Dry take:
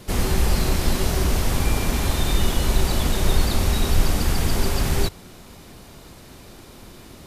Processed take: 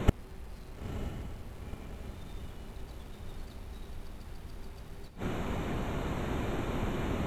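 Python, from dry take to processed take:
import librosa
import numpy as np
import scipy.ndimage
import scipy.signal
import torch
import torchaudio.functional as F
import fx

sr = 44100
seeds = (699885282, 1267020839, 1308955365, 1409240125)

y = fx.wiener(x, sr, points=9)
y = fx.gate_flip(y, sr, shuts_db=-17.0, range_db=-36)
y = fx.echo_diffused(y, sr, ms=947, feedback_pct=55, wet_db=-7)
y = y * 10.0 ** (10.0 / 20.0)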